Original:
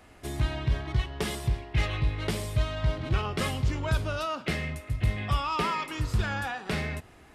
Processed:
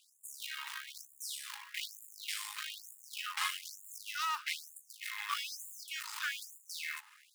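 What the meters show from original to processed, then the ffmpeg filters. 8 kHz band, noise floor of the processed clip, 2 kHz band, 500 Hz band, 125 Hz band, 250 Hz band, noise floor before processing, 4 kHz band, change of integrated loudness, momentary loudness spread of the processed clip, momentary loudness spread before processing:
+1.0 dB, -65 dBFS, -5.5 dB, under -40 dB, under -40 dB, under -40 dB, -54 dBFS, -2.5 dB, -10.0 dB, 10 LU, 4 LU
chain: -af "aeval=exprs='if(lt(val(0),0),0.251*val(0),val(0))':c=same,acrusher=bits=4:mode=log:mix=0:aa=0.000001,volume=21dB,asoftclip=hard,volume=-21dB,afftfilt=real='re*gte(b*sr/1024,800*pow(6900/800,0.5+0.5*sin(2*PI*1.1*pts/sr)))':imag='im*gte(b*sr/1024,800*pow(6900/800,0.5+0.5*sin(2*PI*1.1*pts/sr)))':win_size=1024:overlap=0.75,volume=2dB"

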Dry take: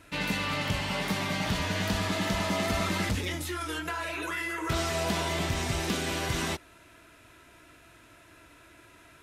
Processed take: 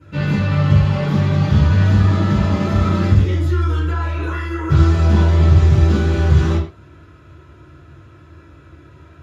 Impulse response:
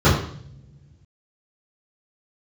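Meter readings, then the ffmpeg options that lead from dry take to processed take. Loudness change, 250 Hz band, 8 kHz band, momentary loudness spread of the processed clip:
+14.0 dB, +13.5 dB, n/a, 9 LU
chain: -filter_complex "[1:a]atrim=start_sample=2205,atrim=end_sample=6615[a];[0:a][a]afir=irnorm=-1:irlink=0,volume=-17.5dB"

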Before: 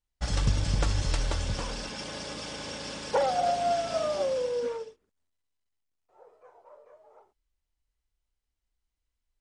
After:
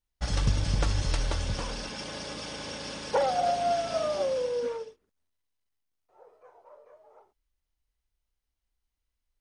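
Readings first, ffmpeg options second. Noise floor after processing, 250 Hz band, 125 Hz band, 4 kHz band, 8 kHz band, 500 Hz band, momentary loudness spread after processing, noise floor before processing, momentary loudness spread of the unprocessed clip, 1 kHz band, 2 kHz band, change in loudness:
-84 dBFS, 0.0 dB, 0.0 dB, 0.0 dB, -1.0 dB, 0.0 dB, 10 LU, -84 dBFS, 10 LU, 0.0 dB, 0.0 dB, 0.0 dB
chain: -af "bandreject=f=7.5k:w=10"

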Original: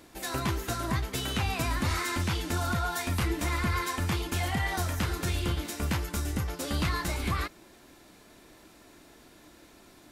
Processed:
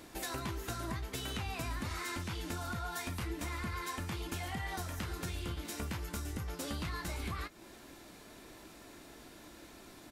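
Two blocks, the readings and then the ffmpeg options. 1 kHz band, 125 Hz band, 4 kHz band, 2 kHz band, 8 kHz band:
-9.0 dB, -10.0 dB, -8.5 dB, -9.0 dB, -7.5 dB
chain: -filter_complex "[0:a]acompressor=threshold=-39dB:ratio=4,asplit=2[a][b];[b]adelay=18,volume=-13dB[c];[a][c]amix=inputs=2:normalize=0,volume=1dB"

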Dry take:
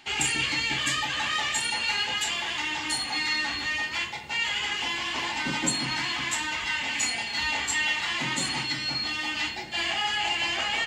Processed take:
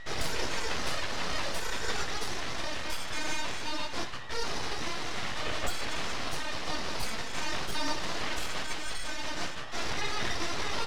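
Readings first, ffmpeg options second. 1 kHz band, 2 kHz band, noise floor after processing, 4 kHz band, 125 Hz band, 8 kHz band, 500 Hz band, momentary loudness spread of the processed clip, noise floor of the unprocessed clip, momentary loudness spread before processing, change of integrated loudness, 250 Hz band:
-4.0 dB, -9.0 dB, -34 dBFS, -9.0 dB, -1.5 dB, -8.0 dB, +3.5 dB, 3 LU, -34 dBFS, 3 LU, -7.5 dB, -3.5 dB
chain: -af "aeval=exprs='val(0)+0.0112*sin(2*PI*960*n/s)':c=same,aeval=exprs='abs(val(0))':c=same,aemphasis=mode=reproduction:type=50fm"

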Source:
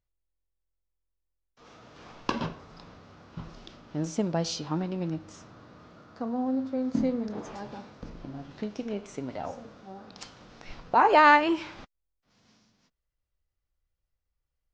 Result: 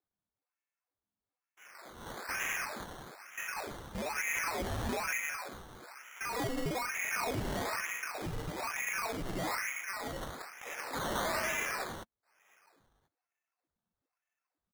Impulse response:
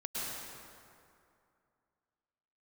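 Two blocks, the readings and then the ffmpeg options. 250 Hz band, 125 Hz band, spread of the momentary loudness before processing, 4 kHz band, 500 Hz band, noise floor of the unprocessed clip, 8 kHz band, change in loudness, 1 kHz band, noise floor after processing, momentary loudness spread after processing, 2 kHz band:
-12.0 dB, -5.0 dB, 25 LU, -2.5 dB, -8.0 dB, -83 dBFS, n/a, -8.5 dB, -11.0 dB, under -85 dBFS, 14 LU, -3.0 dB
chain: -filter_complex "[0:a]agate=range=-8dB:threshold=-48dB:ratio=16:detection=peak,afftfilt=real='re*lt(hypot(re,im),0.355)':imag='im*lt(hypot(re,im),0.355)':win_size=1024:overlap=0.75,highpass=f=170:p=1,lowpass=f=2.3k:t=q:w=0.5098,lowpass=f=2.3k:t=q:w=0.6013,lowpass=f=2.3k:t=q:w=0.9,lowpass=f=2.3k:t=q:w=2.563,afreqshift=-2700,asoftclip=type=tanh:threshold=-24.5dB,asplit=2[a][b];[b]highpass=f=720:p=1,volume=17dB,asoftclip=type=tanh:threshold=-24.5dB[c];[a][c]amix=inputs=2:normalize=0,lowpass=f=1.6k:p=1,volume=-6dB,volume=35dB,asoftclip=hard,volume=-35dB,aecho=1:1:110.8|183.7:0.631|0.708,acrusher=samples=14:mix=1:aa=0.000001:lfo=1:lforange=8.4:lforate=1.1"

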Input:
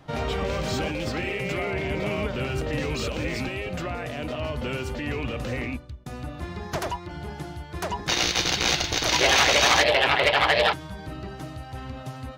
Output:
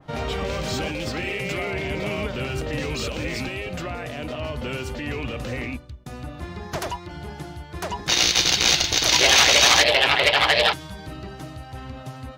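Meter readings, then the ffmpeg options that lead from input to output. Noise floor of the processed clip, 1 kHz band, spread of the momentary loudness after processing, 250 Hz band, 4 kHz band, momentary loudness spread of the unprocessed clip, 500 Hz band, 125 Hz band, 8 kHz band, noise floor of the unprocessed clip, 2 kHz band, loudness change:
-40 dBFS, 0.0 dB, 23 LU, 0.0 dB, +5.5 dB, 19 LU, 0.0 dB, 0.0 dB, +6.5 dB, -40 dBFS, +2.5 dB, +4.0 dB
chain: -af "adynamicequalizer=threshold=0.0178:dfrequency=2400:dqfactor=0.7:tfrequency=2400:tqfactor=0.7:attack=5:release=100:ratio=0.375:range=3.5:mode=boostabove:tftype=highshelf"

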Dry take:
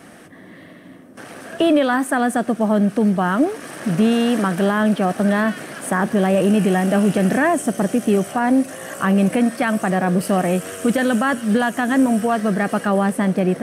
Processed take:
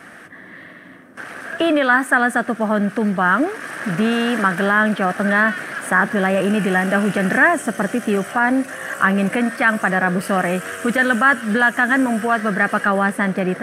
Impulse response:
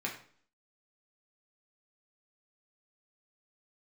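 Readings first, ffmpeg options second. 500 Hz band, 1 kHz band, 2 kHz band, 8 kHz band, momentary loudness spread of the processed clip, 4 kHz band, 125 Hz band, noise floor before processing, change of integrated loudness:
-1.5 dB, +2.5 dB, +9.0 dB, -2.5 dB, 7 LU, +1.0 dB, -3.0 dB, -42 dBFS, +1.0 dB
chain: -af "equalizer=f=1.6k:w=1.1:g=12.5,volume=-3dB"

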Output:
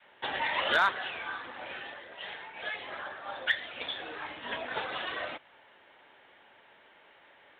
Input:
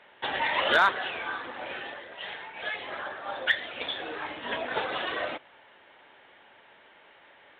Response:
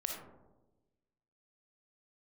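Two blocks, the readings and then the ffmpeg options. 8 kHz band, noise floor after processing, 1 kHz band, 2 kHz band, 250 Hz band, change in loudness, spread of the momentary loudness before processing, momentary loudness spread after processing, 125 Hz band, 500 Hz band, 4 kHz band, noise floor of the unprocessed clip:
n/a, -60 dBFS, -4.0 dB, -3.5 dB, -5.5 dB, -3.5 dB, 15 LU, 15 LU, -3.5 dB, -5.5 dB, -3.0 dB, -57 dBFS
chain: -af "adynamicequalizer=threshold=0.00562:dfrequency=400:dqfactor=0.76:tfrequency=400:tqfactor=0.76:attack=5:release=100:ratio=0.375:range=2.5:mode=cutabove:tftype=bell,volume=-3dB"

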